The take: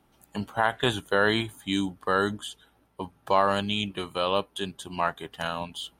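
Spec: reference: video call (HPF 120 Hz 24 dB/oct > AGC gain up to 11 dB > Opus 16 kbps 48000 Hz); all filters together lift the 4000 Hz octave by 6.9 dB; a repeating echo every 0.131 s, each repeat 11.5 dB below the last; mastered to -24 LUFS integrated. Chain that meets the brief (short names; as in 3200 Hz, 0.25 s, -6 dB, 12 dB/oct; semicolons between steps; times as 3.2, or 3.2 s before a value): HPF 120 Hz 24 dB/oct; bell 4000 Hz +9 dB; feedback echo 0.131 s, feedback 27%, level -11.5 dB; AGC gain up to 11 dB; gain +2 dB; Opus 16 kbps 48000 Hz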